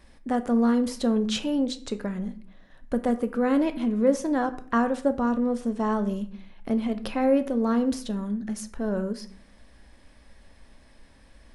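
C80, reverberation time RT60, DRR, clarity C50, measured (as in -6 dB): 19.0 dB, 0.50 s, 9.5 dB, 15.0 dB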